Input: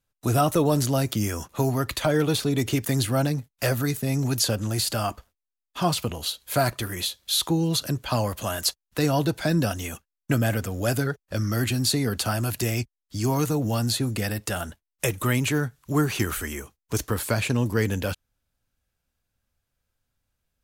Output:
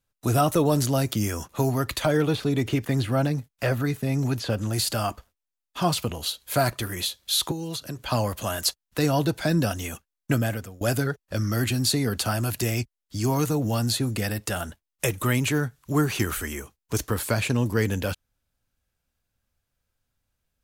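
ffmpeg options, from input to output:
-filter_complex "[0:a]asettb=1/sr,asplit=3[a][b][c];[a]atrim=end=2.174[d];[b]atrim=start=2.17:end=4.73,asetpts=PTS-STARTPTS,afade=t=in:d=0.004:c=qsin,afade=t=out:st=2.556:d=0.004:c=qsin,acrossover=split=3500[e][f];[f]acompressor=threshold=-43dB:ratio=4:attack=1:release=60[g];[e][g]amix=inputs=2:normalize=0[h];[c]atrim=start=4.726[i];[d][h]acrossfade=d=0.004:c1=hsin:c2=qsin[j];[j][i]acrossfade=d=0.004:c1=qsin:c2=hsin,asettb=1/sr,asplit=3[k][l][m];[k]atrim=end=7.514[n];[l]atrim=start=7.51:end=7.99,asetpts=PTS-STARTPTS,afade=t=in:d=0.004:c=qsin,afade=t=out:st=0.476:d=0.004:c=qsin,acrossover=split=370|5800[o][p][q];[o]acompressor=threshold=-35dB:ratio=4[r];[p]acompressor=threshold=-35dB:ratio=4[s];[q]acompressor=threshold=-41dB:ratio=4[t];[r][s][t]amix=inputs=3:normalize=0[u];[m]atrim=start=7.986[v];[n][u]acrossfade=d=0.004:c1=hsin:c2=qsin[w];[w][v]acrossfade=d=0.004:c1=qsin:c2=hsin,asplit=2[x][y];[x]atrim=end=10.81,asetpts=PTS-STARTPTS,afade=t=out:st=10.33:d=0.48:silence=0.0891251[z];[y]atrim=start=10.81,asetpts=PTS-STARTPTS,afade=t=in:d=0.004:c=hsin:silence=0.0891251[aa];[z][aa]concat=n=2:v=0:a=1"

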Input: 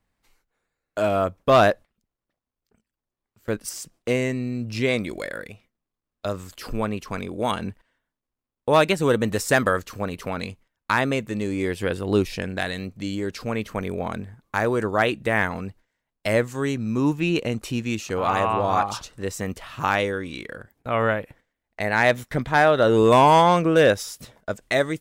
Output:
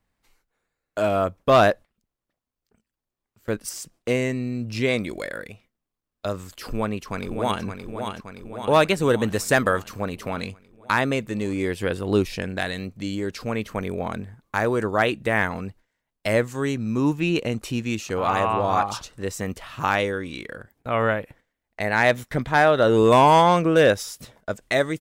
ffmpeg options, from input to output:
-filter_complex "[0:a]asplit=2[a][b];[b]afade=t=in:st=6.65:d=0.01,afade=t=out:st=7.63:d=0.01,aecho=0:1:570|1140|1710|2280|2850|3420|3990|4560|5130:0.473151|0.307548|0.199906|0.129939|0.0844605|0.0548993|0.0356845|0.023195|0.0150767[c];[a][c]amix=inputs=2:normalize=0"

